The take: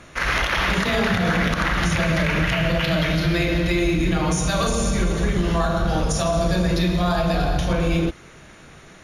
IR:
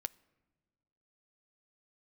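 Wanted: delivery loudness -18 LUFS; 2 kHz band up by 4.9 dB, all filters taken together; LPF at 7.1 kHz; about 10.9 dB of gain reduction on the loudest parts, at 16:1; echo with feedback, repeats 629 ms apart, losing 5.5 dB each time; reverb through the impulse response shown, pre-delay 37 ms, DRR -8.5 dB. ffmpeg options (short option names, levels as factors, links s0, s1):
-filter_complex "[0:a]lowpass=7100,equalizer=f=2000:t=o:g=6,acompressor=threshold=0.0501:ratio=16,aecho=1:1:629|1258|1887|2516|3145|3774|4403:0.531|0.281|0.149|0.079|0.0419|0.0222|0.0118,asplit=2[s0][s1];[1:a]atrim=start_sample=2205,adelay=37[s2];[s1][s2]afir=irnorm=-1:irlink=0,volume=3.16[s3];[s0][s3]amix=inputs=2:normalize=0,volume=1.26"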